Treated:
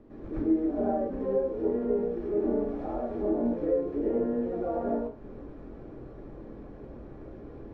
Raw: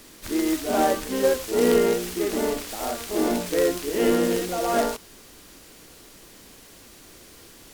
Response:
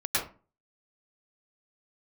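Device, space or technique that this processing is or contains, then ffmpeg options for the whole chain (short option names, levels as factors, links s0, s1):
television next door: -filter_complex "[0:a]acompressor=threshold=0.0178:ratio=4,lowpass=550[s0];[1:a]atrim=start_sample=2205[s1];[s0][s1]afir=irnorm=-1:irlink=0"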